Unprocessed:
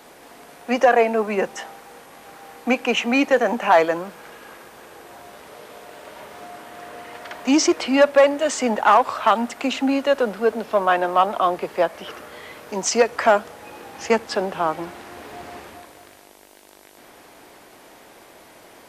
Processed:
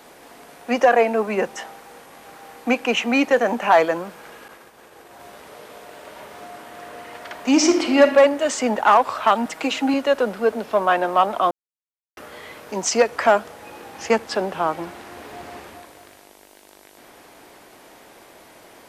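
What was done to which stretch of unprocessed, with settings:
0:04.48–0:05.20: downward expander −40 dBFS
0:07.49–0:08.02: thrown reverb, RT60 1 s, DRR 4.5 dB
0:09.45–0:09.94: comb filter 6.3 ms
0:11.51–0:12.17: silence

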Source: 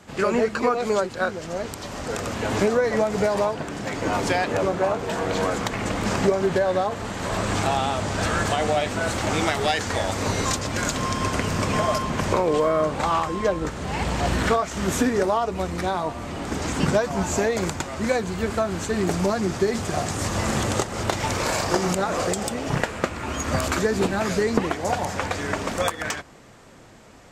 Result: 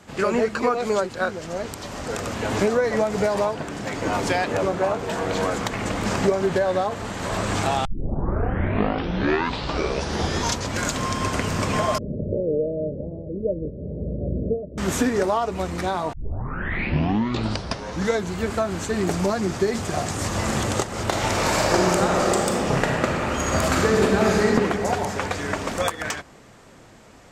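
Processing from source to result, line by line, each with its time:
0:07.85: tape start 2.96 s
0:11.98–0:14.78: Chebyshev low-pass with heavy ripple 610 Hz, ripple 3 dB
0:16.13: tape start 2.21 s
0:21.08–0:24.47: thrown reverb, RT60 2.7 s, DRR −1.5 dB

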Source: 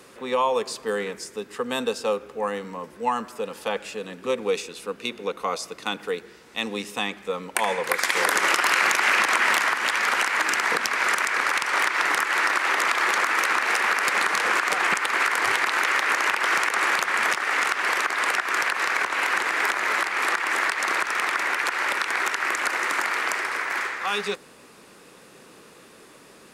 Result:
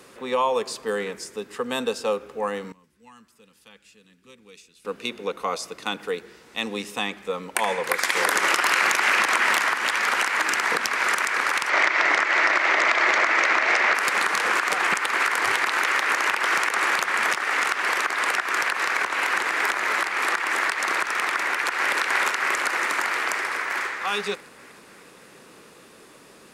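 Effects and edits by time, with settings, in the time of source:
0:02.72–0:04.85: guitar amp tone stack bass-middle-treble 6-0-2
0:11.69–0:13.95: loudspeaker in its box 120–6,600 Hz, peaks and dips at 330 Hz +4 dB, 630 Hz +9 dB, 2,100 Hz +6 dB
0:21.48–0:21.97: delay throw 310 ms, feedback 70%, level −2.5 dB

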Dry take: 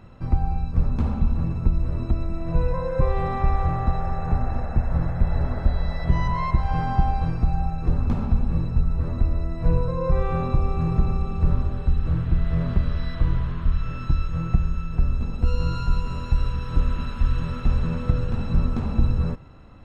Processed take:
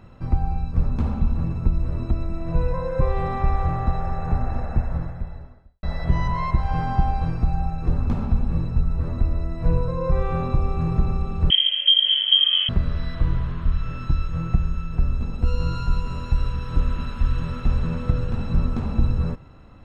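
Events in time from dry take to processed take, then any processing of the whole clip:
0:04.78–0:05.83: fade out quadratic
0:11.50–0:12.69: voice inversion scrambler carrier 3,200 Hz

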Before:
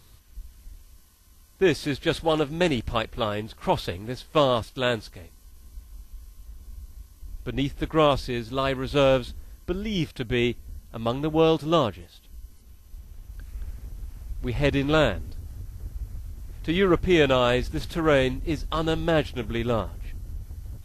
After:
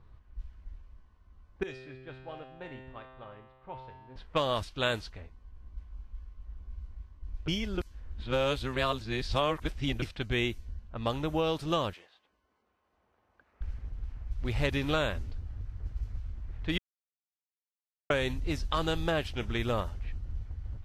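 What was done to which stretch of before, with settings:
0:01.63–0:04.16: tuned comb filter 130 Hz, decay 1.8 s, mix 90%
0:07.48–0:10.02: reverse
0:11.93–0:13.61: high-pass filter 490 Hz
0:16.78–0:18.10: silence
whole clip: downward compressor, threshold −21 dBFS; low-pass that shuts in the quiet parts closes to 1,100 Hz, open at −22.5 dBFS; parametric band 290 Hz −6 dB 2.6 octaves

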